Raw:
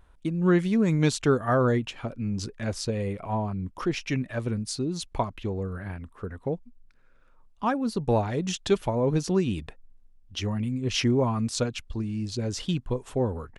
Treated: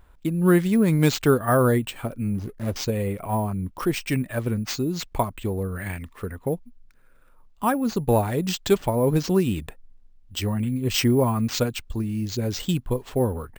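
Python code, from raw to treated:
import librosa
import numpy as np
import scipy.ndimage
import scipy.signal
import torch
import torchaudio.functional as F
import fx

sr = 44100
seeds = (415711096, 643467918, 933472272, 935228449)

y = fx.median_filter(x, sr, points=41, at=(2.35, 2.76))
y = fx.spec_box(y, sr, start_s=5.76, length_s=0.55, low_hz=1700.0, high_hz=7000.0, gain_db=10)
y = np.repeat(y[::4], 4)[:len(y)]
y = y * 10.0 ** (3.5 / 20.0)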